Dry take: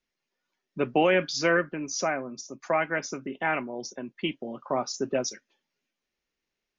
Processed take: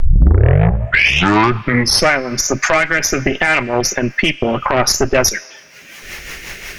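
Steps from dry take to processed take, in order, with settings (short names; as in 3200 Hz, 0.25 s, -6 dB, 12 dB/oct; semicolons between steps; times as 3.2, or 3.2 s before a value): tape start at the beginning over 2.17 s; added harmonics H 8 -21 dB, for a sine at -11 dBFS; ten-band EQ 250 Hz -11 dB, 500 Hz -5 dB, 1000 Hz -4 dB, 2000 Hz +5 dB, 4000 Hz -7 dB; upward compressor, threshold -34 dBFS; rotary speaker horn 5.5 Hz; on a send at -13 dB: differentiator + reverb RT60 2.3 s, pre-delay 5 ms; on the sum: compressor 4:1, threshold -38 dBFS, peak gain reduction 15 dB; maximiser +31 dB; gain -1 dB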